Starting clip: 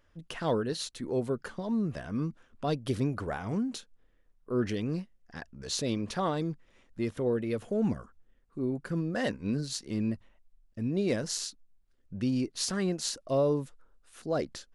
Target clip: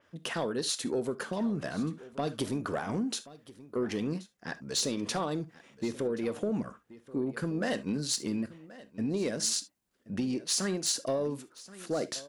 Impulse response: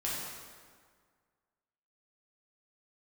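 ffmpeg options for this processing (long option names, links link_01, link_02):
-filter_complex "[0:a]highpass=170,acompressor=threshold=-33dB:ratio=6,atempo=1.2,aeval=exprs='0.0944*sin(PI/2*1.58*val(0)/0.0944)':channel_layout=same,aecho=1:1:1078:0.119,asplit=2[link_01][link_02];[1:a]atrim=start_sample=2205,atrim=end_sample=3528[link_03];[link_02][link_03]afir=irnorm=-1:irlink=0,volume=-12.5dB[link_04];[link_01][link_04]amix=inputs=2:normalize=0,adynamicequalizer=threshold=0.00794:dfrequency=5000:dqfactor=0.7:tfrequency=5000:tqfactor=0.7:attack=5:release=100:ratio=0.375:range=2.5:mode=boostabove:tftype=highshelf,volume=-3.5dB"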